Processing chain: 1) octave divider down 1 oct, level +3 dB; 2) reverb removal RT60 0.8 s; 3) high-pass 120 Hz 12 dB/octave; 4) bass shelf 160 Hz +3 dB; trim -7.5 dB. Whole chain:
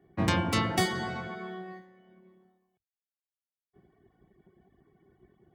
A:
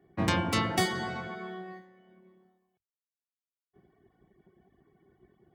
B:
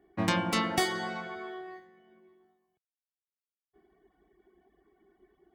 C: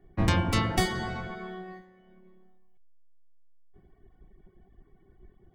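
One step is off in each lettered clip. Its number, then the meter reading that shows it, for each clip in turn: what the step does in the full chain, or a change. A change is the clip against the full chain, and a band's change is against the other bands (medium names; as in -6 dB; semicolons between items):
4, 125 Hz band -2.0 dB; 1, 125 Hz band -5.5 dB; 3, 125 Hz band +4.0 dB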